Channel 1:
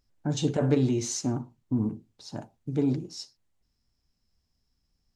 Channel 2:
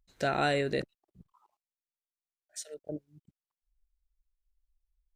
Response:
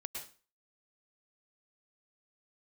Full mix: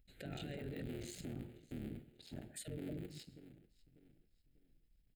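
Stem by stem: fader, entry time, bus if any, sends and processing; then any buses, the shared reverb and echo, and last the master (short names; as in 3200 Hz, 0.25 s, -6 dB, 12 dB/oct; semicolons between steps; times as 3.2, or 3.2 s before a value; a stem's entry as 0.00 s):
-4.0 dB, 0.00 s, send -13 dB, echo send -22 dB, cycle switcher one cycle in 3, muted; compressor, threshold -27 dBFS, peak gain reduction 8.5 dB
-2.5 dB, 0.00 s, no send, no echo send, negative-ratio compressor -36 dBFS, ratio -1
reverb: on, RT60 0.35 s, pre-delay 98 ms
echo: feedback echo 0.594 s, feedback 33%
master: fixed phaser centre 2500 Hz, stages 4; limiter -37 dBFS, peak gain reduction 14.5 dB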